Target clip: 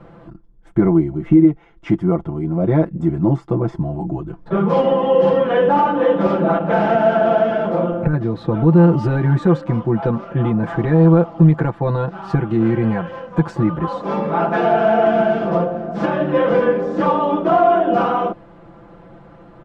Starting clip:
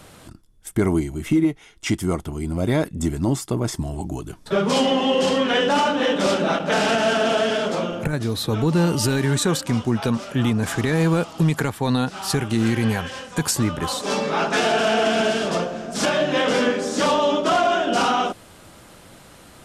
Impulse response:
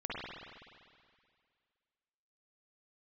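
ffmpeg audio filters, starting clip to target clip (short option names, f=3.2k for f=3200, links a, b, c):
-af "lowpass=1.1k,aecho=1:1:5.9:0.94,volume=2.5dB"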